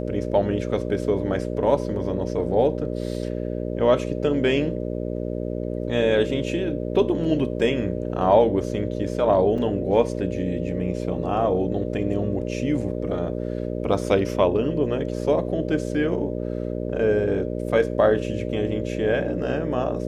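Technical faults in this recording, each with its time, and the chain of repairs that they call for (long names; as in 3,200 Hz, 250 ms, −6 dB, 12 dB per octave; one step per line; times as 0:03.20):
mains buzz 60 Hz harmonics 10 −28 dBFS
0:09.58: drop-out 4.6 ms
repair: hum removal 60 Hz, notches 10
repair the gap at 0:09.58, 4.6 ms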